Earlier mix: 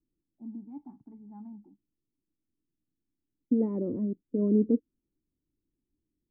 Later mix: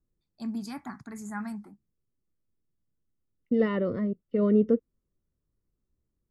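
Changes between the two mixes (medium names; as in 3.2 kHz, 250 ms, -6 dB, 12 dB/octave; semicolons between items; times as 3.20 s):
second voice -8.0 dB; master: remove cascade formant filter u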